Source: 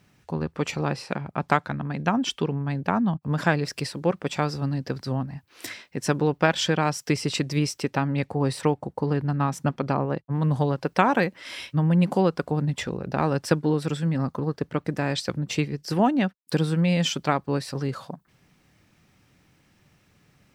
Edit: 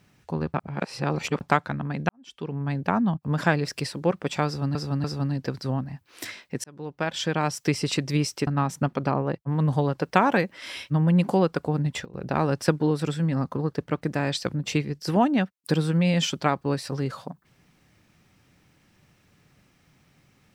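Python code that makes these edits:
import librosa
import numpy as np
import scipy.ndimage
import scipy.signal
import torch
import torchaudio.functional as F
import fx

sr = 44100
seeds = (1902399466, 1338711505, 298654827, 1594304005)

y = fx.edit(x, sr, fx.reverse_span(start_s=0.54, length_s=0.87),
    fx.fade_in_span(start_s=2.09, length_s=0.55, curve='qua'),
    fx.repeat(start_s=4.46, length_s=0.29, count=3),
    fx.fade_in_span(start_s=6.06, length_s=0.94),
    fx.cut(start_s=7.89, length_s=1.41),
    fx.fade_down_up(start_s=12.53, length_s=0.79, db=-17.0, fade_s=0.35, curve='log'), tone=tone)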